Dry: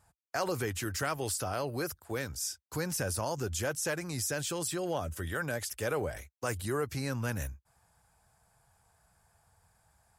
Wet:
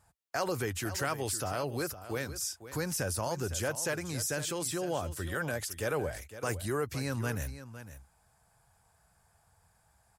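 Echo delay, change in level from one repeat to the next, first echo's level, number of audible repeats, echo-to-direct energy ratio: 508 ms, no regular repeats, -13.0 dB, 1, -13.0 dB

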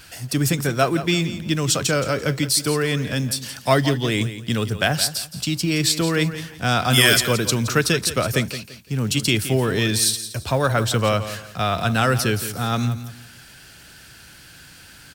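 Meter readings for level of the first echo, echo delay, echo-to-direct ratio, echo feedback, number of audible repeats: -12.5 dB, 170 ms, -12.0 dB, 28%, 3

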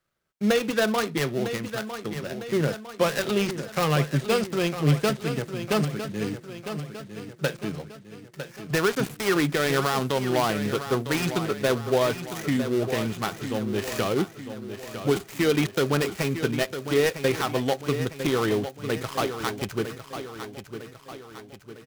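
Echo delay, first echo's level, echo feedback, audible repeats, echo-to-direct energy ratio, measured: 954 ms, -10.0 dB, 51%, 5, -8.5 dB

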